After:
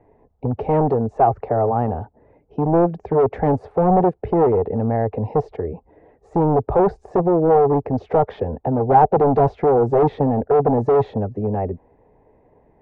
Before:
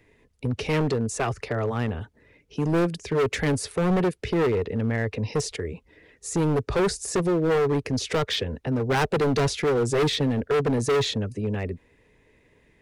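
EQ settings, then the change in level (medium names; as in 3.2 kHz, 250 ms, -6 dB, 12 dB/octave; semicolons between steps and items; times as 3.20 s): resonant low-pass 780 Hz, resonance Q 4.9; +3.5 dB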